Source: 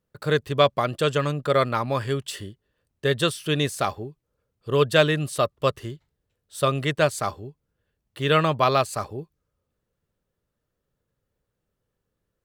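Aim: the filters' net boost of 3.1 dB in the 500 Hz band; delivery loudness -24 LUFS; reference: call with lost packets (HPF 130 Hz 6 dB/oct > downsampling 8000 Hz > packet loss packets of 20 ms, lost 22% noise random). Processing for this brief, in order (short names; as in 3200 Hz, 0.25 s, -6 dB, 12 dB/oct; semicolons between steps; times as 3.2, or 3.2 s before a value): HPF 130 Hz 6 dB/oct; bell 500 Hz +4 dB; downsampling 8000 Hz; packet loss packets of 20 ms, lost 22% noise random; gain -2 dB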